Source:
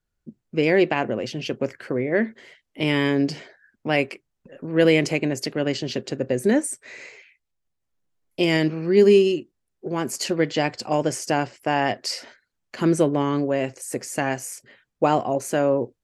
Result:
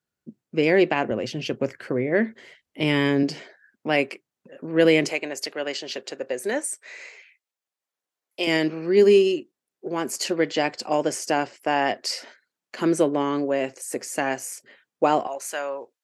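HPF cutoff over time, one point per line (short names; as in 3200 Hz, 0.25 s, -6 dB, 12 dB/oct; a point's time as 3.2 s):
150 Hz
from 1.11 s 62 Hz
from 3.23 s 190 Hz
from 5.1 s 550 Hz
from 8.47 s 250 Hz
from 15.27 s 930 Hz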